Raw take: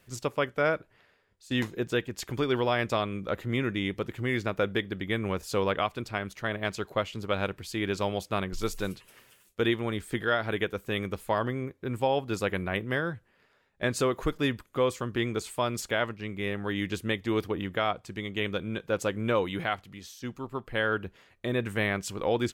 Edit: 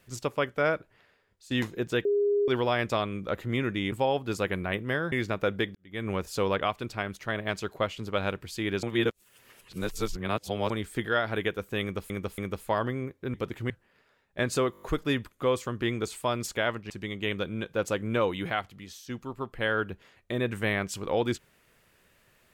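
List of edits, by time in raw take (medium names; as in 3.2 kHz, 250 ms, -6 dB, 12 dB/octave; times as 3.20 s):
2.05–2.48 s: bleep 408 Hz -21.5 dBFS
3.92–4.28 s: swap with 11.94–13.14 s
4.91–5.23 s: fade in quadratic
7.99–9.86 s: reverse
10.98–11.26 s: loop, 3 plays
14.16 s: stutter 0.02 s, 6 plays
16.24–18.04 s: delete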